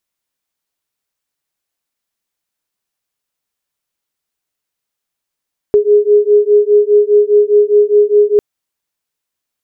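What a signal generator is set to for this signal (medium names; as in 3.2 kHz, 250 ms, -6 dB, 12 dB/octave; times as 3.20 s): beating tones 413 Hz, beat 4.9 Hz, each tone -9.5 dBFS 2.65 s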